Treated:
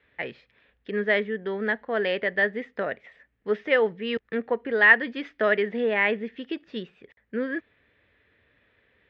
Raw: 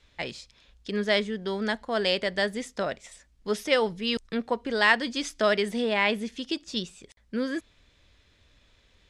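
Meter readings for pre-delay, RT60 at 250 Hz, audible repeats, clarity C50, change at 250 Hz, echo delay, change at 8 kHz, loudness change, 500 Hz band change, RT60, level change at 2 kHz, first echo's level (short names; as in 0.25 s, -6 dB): none, none, none, none, -1.5 dB, none, under -30 dB, +2.5 dB, +2.0 dB, none, +5.5 dB, none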